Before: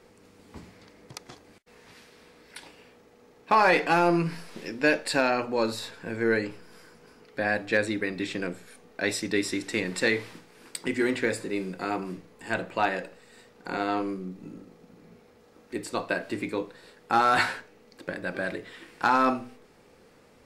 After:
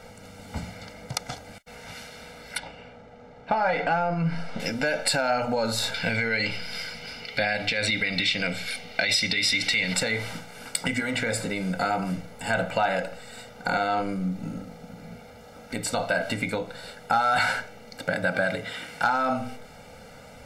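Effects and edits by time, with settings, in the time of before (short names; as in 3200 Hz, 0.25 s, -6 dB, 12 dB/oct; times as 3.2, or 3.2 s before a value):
2.58–4.6 tape spacing loss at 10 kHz 21 dB
5.94–9.94 band shelf 3200 Hz +12 dB
18.07–19.05 HPF 79 Hz
whole clip: limiter -19.5 dBFS; compressor, threshold -32 dBFS; comb 1.4 ms, depth 95%; gain +9 dB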